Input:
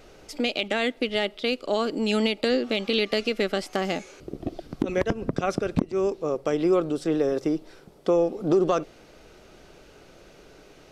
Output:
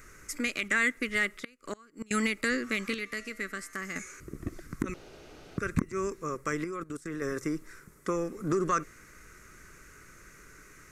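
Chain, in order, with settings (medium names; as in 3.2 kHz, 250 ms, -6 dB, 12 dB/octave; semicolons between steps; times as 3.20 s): FFT filter 100 Hz 0 dB, 420 Hz -9 dB, 780 Hz -20 dB, 1.1 kHz +2 dB, 2 kHz +7 dB, 3.1 kHz -13 dB, 4.7 kHz -7 dB, 6.8 kHz +8 dB; 1.42–2.11 s: inverted gate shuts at -24 dBFS, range -26 dB; 2.94–3.96 s: feedback comb 92 Hz, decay 1.4 s, harmonics odd, mix 60%; 4.94–5.58 s: room tone; 6.64–7.22 s: level held to a coarse grid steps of 18 dB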